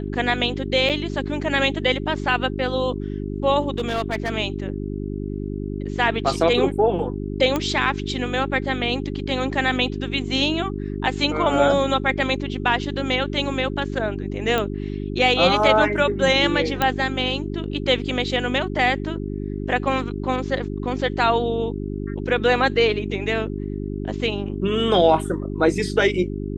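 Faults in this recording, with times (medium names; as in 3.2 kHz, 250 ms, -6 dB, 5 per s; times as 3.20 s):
hum 50 Hz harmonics 8 -28 dBFS
0.89–0.90 s: dropout 6.6 ms
3.74–4.30 s: clipped -18.5 dBFS
7.56 s: pop -9 dBFS
14.58 s: pop -9 dBFS
16.82 s: pop -6 dBFS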